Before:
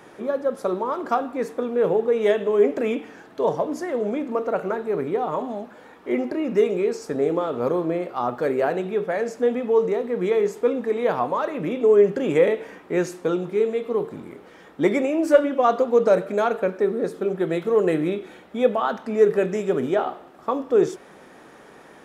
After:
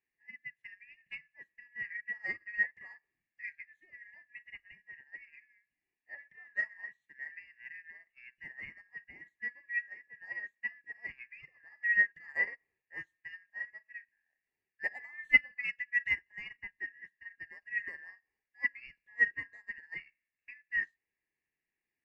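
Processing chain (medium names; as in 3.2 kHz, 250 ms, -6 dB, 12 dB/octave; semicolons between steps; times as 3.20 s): four frequency bands reordered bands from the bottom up 2143; tone controls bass 0 dB, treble -8 dB; upward expansion 2.5:1, over -34 dBFS; trim -7 dB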